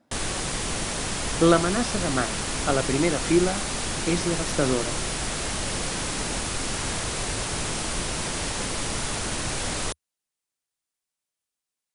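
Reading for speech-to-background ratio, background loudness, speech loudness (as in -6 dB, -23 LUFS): 2.5 dB, -28.0 LUFS, -25.5 LUFS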